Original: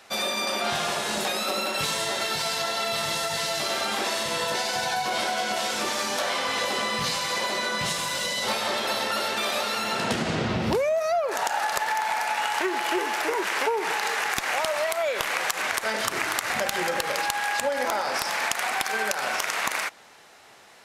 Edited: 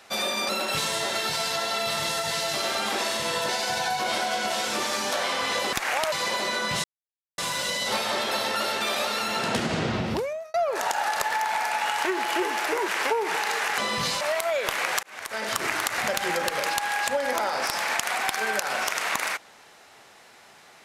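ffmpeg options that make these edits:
-filter_complex "[0:a]asplit=9[s0][s1][s2][s3][s4][s5][s6][s7][s8];[s0]atrim=end=0.492[s9];[s1]atrim=start=1.548:end=6.792[s10];[s2]atrim=start=14.338:end=14.732[s11];[s3]atrim=start=7.218:end=7.94,asetpts=PTS-STARTPTS,afade=t=out:st=0.718:d=0.004:c=hsin,apad=pad_dur=0.54[s12];[s4]atrim=start=7.94:end=11.1,asetpts=PTS-STARTPTS,afade=t=in:d=0.004:c=hsin,afade=t=out:st=2.36:d=0.8:c=qsin[s13];[s5]atrim=start=11.1:end=14.342,asetpts=PTS-STARTPTS,afade=t=in:d=0.004:c=hsin[s14];[s6]atrim=start=6.788:end=7.222[s15];[s7]atrim=start=14.728:end=15.55,asetpts=PTS-STARTPTS,afade=t=out:st=0.818:d=0.004:c=hsin[s16];[s8]atrim=start=15.55,asetpts=PTS-STARTPTS,afade=t=in:d=0.55[s17];[s9][s10]acrossfade=d=0.004:c1=hsin:c2=hsin[s18];[s18][s11]acrossfade=d=0.004:c1=hsin:c2=hsin[s19];[s12][s13][s14]concat=n=3:v=0:a=1[s20];[s19][s20]acrossfade=d=0.004:c1=hsin:c2=hsin[s21];[s21][s15]acrossfade=d=0.004:c1=hsin:c2=hsin[s22];[s16][s17]concat=n=2:v=0:a=1[s23];[s22][s23]acrossfade=d=0.004:c1=hsin:c2=hsin"

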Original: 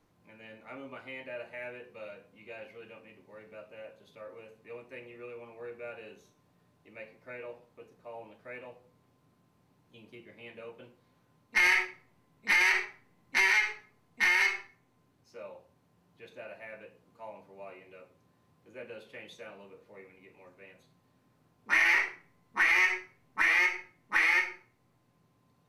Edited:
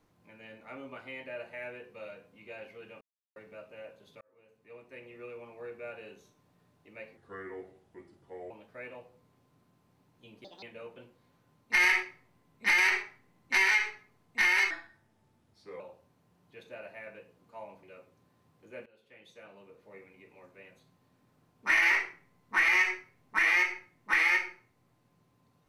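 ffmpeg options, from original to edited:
-filter_complex "[0:a]asplit=12[s0][s1][s2][s3][s4][s5][s6][s7][s8][s9][s10][s11];[s0]atrim=end=3.01,asetpts=PTS-STARTPTS,afade=t=out:st=3.006:d=0.004:c=hsin[s12];[s1]atrim=start=3.01:end=3.36,asetpts=PTS-STARTPTS,volume=0[s13];[s2]atrim=start=3.36:end=4.21,asetpts=PTS-STARTPTS,afade=t=in:d=0.004:c=hsin,afade=t=out:st=0.846:d=0.004:c=hsin[s14];[s3]atrim=start=4.21:end=7.174,asetpts=PTS-STARTPTS,afade=t=in:d=1.02[s15];[s4]atrim=start=7.17:end=8.21,asetpts=PTS-STARTPTS,asetrate=34398,aresample=44100[s16];[s5]atrim=start=8.206:end=10.154[s17];[s6]atrim=start=10.15:end=10.45,asetpts=PTS-STARTPTS,asetrate=72765,aresample=44100,atrim=end_sample=8018,asetpts=PTS-STARTPTS[s18];[s7]atrim=start=10.446:end=14.534[s19];[s8]atrim=start=14.53:end=15.46,asetpts=PTS-STARTPTS,asetrate=37485,aresample=44100[s20];[s9]atrim=start=15.456:end=17.492[s21];[s10]atrim=start=17.858:end=18.89,asetpts=PTS-STARTPTS,afade=t=out:st=1.028:d=0.004:c=hsin:silence=0.0707946[s22];[s11]atrim=start=18.89,asetpts=PTS-STARTPTS,afade=t=in:d=1.12:silence=0.0707946[s23];[s12][s13][s14][s15]concat=n=4:v=0:a=1[s24];[s24][s16]acrossfade=d=0.004:c1=hsin:c2=hsin[s25];[s25][s17]acrossfade=d=0.004:c1=hsin:c2=hsin[s26];[s26][s18]acrossfade=d=0.004:c1=hsin:c2=hsin[s27];[s27][s19]acrossfade=d=0.004:c1=hsin:c2=hsin[s28];[s28][s20]acrossfade=d=0.004:c1=hsin:c2=hsin[s29];[s29][s21]acrossfade=d=0.004:c1=hsin:c2=hsin[s30];[s22][s23]concat=n=2:v=0:a=1[s31];[s30][s31]acrossfade=d=0.004:c1=hsin:c2=hsin"

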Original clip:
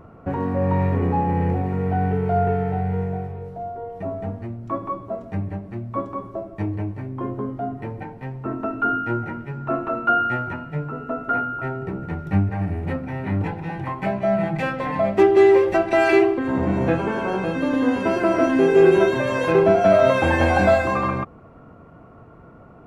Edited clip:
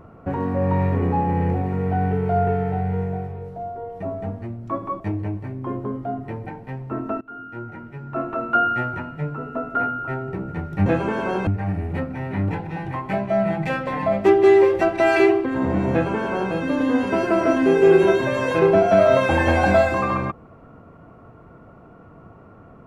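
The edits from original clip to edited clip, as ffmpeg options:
-filter_complex "[0:a]asplit=5[s0][s1][s2][s3][s4];[s0]atrim=end=5.002[s5];[s1]atrim=start=6.538:end=8.75,asetpts=PTS-STARTPTS,afade=t=out:st=2.208:d=0.004:c=hsin:silence=0.0630957[s6];[s2]atrim=start=8.75:end=12.402,asetpts=PTS-STARTPTS,afade=t=in:d=1.33:silence=0.0630957[s7];[s3]atrim=start=16.848:end=17.462[s8];[s4]atrim=start=12.398[s9];[s6][s7]concat=n=2:v=0:a=1[s10];[s5][s10]acrossfade=d=0.004:c1=hsin:c2=hsin[s11];[s11][s8]acrossfade=d=0.004:c1=hsin:c2=hsin[s12];[s12][s9]acrossfade=d=0.004:c1=hsin:c2=hsin"

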